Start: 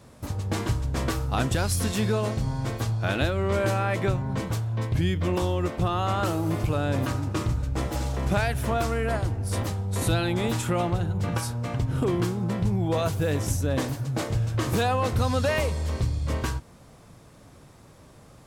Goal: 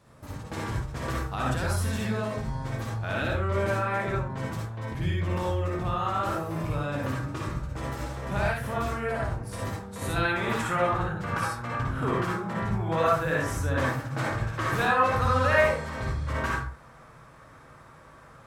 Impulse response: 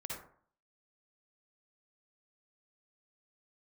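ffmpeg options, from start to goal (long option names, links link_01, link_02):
-filter_complex "[0:a]asetnsamples=nb_out_samples=441:pad=0,asendcmd='10.16 equalizer g 14.5',equalizer=frequency=1400:width=0.77:gain=5.5[link_01];[1:a]atrim=start_sample=2205,afade=type=out:start_time=0.22:duration=0.01,atrim=end_sample=10143[link_02];[link_01][link_02]afir=irnorm=-1:irlink=0,volume=-4.5dB"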